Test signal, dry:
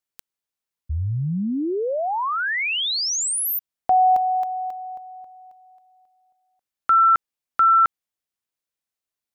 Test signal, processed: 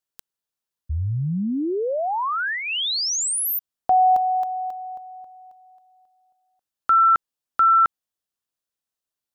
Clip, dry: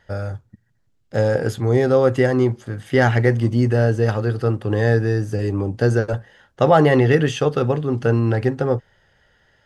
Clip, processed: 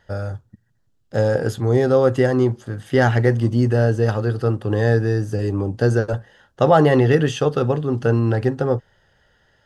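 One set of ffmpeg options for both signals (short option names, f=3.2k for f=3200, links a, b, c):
-af "equalizer=f=2.2k:w=4.1:g=-6.5"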